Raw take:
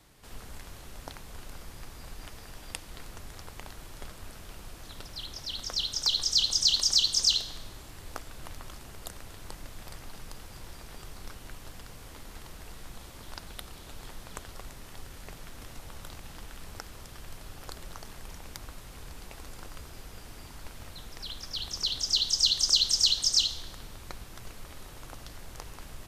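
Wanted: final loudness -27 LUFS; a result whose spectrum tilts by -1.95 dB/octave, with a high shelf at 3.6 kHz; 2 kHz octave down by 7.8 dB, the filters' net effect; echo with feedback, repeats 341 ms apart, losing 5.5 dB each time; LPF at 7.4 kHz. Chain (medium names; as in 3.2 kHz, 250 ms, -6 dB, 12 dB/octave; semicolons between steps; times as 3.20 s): low-pass 7.4 kHz; peaking EQ 2 kHz -8 dB; treble shelf 3.6 kHz -9 dB; feedback delay 341 ms, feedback 53%, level -5.5 dB; trim +7.5 dB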